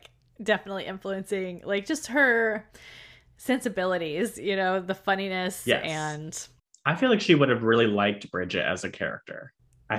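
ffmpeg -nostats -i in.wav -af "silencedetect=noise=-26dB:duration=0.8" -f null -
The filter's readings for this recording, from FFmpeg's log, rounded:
silence_start: 2.57
silence_end: 3.49 | silence_duration: 0.92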